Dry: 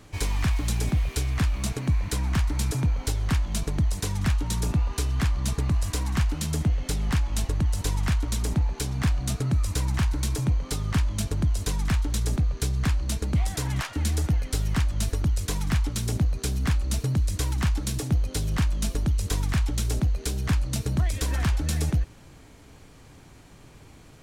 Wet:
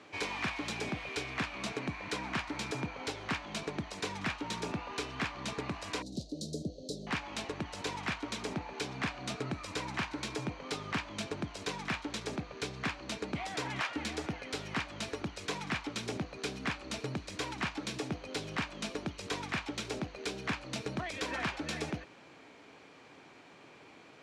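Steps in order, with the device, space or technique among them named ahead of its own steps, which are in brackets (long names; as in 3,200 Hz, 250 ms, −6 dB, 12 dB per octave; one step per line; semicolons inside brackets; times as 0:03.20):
intercom (band-pass filter 320–4,000 Hz; parametric band 2,400 Hz +4.5 dB 0.2 octaves; soft clipping −23 dBFS, distortion −20 dB)
0:06.02–0:07.07: Chebyshev band-stop filter 600–4,000 Hz, order 4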